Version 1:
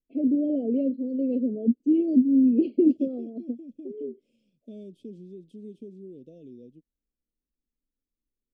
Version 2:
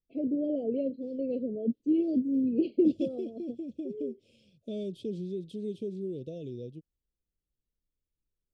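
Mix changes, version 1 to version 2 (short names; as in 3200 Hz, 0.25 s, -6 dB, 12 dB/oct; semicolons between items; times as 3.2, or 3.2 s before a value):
second voice +10.0 dB; master: add fifteen-band EQ 100 Hz +12 dB, 250 Hz -10 dB, 4000 Hz +7 dB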